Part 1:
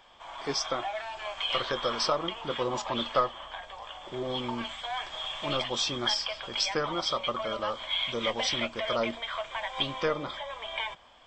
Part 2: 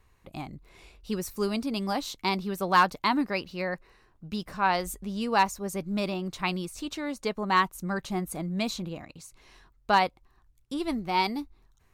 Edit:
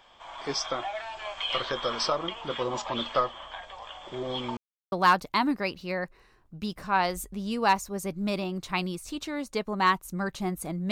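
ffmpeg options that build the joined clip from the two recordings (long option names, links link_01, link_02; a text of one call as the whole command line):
ffmpeg -i cue0.wav -i cue1.wav -filter_complex "[0:a]apad=whole_dur=10.91,atrim=end=10.91,asplit=2[link_01][link_02];[link_01]atrim=end=4.57,asetpts=PTS-STARTPTS,afade=type=out:start_time=4.566:duration=0.004:curve=hsin[link_03];[link_02]atrim=start=4.57:end=4.92,asetpts=PTS-STARTPTS,volume=0[link_04];[1:a]atrim=start=2.62:end=8.61,asetpts=PTS-STARTPTS,afade=type=in:duration=0.004:curve=hsin[link_05];[link_03][link_04][link_05]concat=n=3:v=0:a=1" out.wav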